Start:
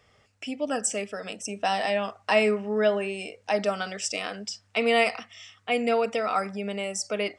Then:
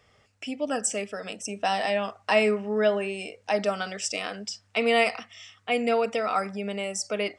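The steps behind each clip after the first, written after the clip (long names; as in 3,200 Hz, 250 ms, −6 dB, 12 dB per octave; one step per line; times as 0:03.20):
no processing that can be heard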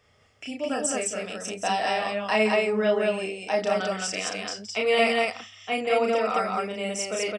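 loudspeakers that aren't time-aligned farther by 11 metres −2 dB, 58 metres −9 dB, 73 metres −1 dB
level −2.5 dB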